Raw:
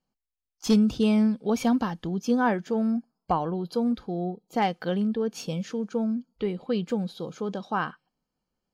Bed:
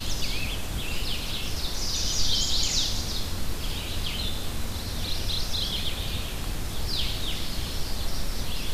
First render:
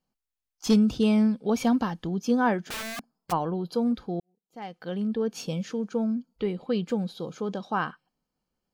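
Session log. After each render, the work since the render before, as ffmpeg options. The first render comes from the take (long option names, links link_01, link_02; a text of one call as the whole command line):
ffmpeg -i in.wav -filter_complex "[0:a]asplit=3[link_01][link_02][link_03];[link_01]afade=type=out:start_time=2.64:duration=0.02[link_04];[link_02]aeval=exprs='(mod(29.9*val(0)+1,2)-1)/29.9':channel_layout=same,afade=type=in:start_time=2.64:duration=0.02,afade=type=out:start_time=3.31:duration=0.02[link_05];[link_03]afade=type=in:start_time=3.31:duration=0.02[link_06];[link_04][link_05][link_06]amix=inputs=3:normalize=0,asplit=2[link_07][link_08];[link_07]atrim=end=4.2,asetpts=PTS-STARTPTS,afade=type=out:start_time=4.196:duration=0.004:curve=hsin[link_09];[link_08]atrim=start=4.2,asetpts=PTS-STARTPTS,afade=type=in:duration=0.98:curve=qua[link_10];[link_09][link_10]concat=n=2:v=0:a=1" out.wav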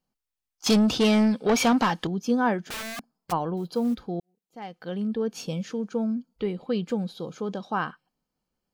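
ffmpeg -i in.wav -filter_complex "[0:a]asettb=1/sr,asplit=3[link_01][link_02][link_03];[link_01]atrim=end=0.664[link_04];[link_02]atrim=start=0.66:end=2.07,asetpts=PTS-STARTPTS,afade=type=in:duration=0.004:curve=qsin,afade=type=out:start_time=1.406:duration=0.004:curve=qsin,asplit=2[link_05][link_06];[link_06]highpass=frequency=720:poles=1,volume=20dB,asoftclip=type=tanh:threshold=-13dB[link_07];[link_05][link_07]amix=inputs=2:normalize=0,lowpass=frequency=7600:poles=1,volume=-6dB[link_08];[link_03]atrim=start=2.066[link_09];[link_04][link_08]acrossfade=duration=0.004:curve1=hsin:curve2=qsin[link_10];[link_10][link_09]acrossfade=duration=0.004:curve1=qsin:curve2=hsin,asettb=1/sr,asplit=3[link_11][link_12][link_13];[link_11]atrim=end=3.574[link_14];[link_12]atrim=start=3.57:end=4.03,asetpts=PTS-STARTPTS,afade=type=in:duration=0.004:curve=qsin,afade=type=out:start_time=0.456:duration=0.004:curve=qsin,acrusher=bits=8:mode=log:mix=0:aa=0.000001[link_15];[link_13]atrim=start=4.026[link_16];[link_14][link_15]acrossfade=duration=0.004:curve1=hsin:curve2=qsin[link_17];[link_17][link_16]acrossfade=duration=0.004:curve1=qsin:curve2=hsin" out.wav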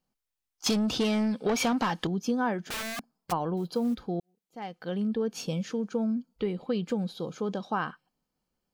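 ffmpeg -i in.wav -af "acompressor=threshold=-24dB:ratio=6" out.wav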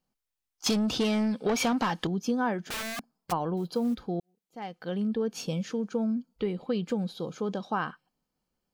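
ffmpeg -i in.wav -af anull out.wav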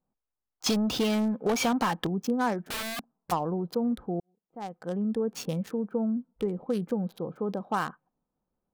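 ffmpeg -i in.wav -filter_complex "[0:a]acrossover=split=1200[link_01][link_02];[link_01]crystalizer=i=6.5:c=0[link_03];[link_02]acrusher=bits=5:mix=0:aa=0.5[link_04];[link_03][link_04]amix=inputs=2:normalize=0" out.wav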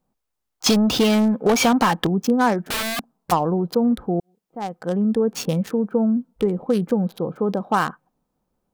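ffmpeg -i in.wav -af "volume=9dB" out.wav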